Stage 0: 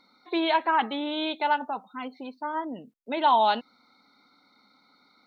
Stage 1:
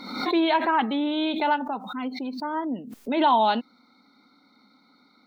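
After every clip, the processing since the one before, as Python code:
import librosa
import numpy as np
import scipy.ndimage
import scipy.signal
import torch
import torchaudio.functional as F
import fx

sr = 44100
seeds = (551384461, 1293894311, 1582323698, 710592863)

y = fx.peak_eq(x, sr, hz=240.0, db=8.0, octaves=1.2)
y = fx.pre_swell(y, sr, db_per_s=63.0)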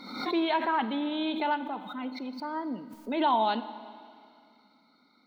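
y = fx.rev_schroeder(x, sr, rt60_s=2.3, comb_ms=32, drr_db=13.0)
y = y * librosa.db_to_amplitude(-5.5)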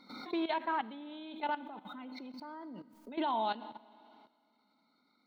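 y = fx.level_steps(x, sr, step_db=14)
y = y * librosa.db_to_amplitude(-4.0)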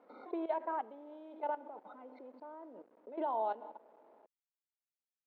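y = fx.delta_hold(x, sr, step_db=-55.5)
y = fx.ladder_bandpass(y, sr, hz=570.0, resonance_pct=50)
y = y * librosa.db_to_amplitude(10.0)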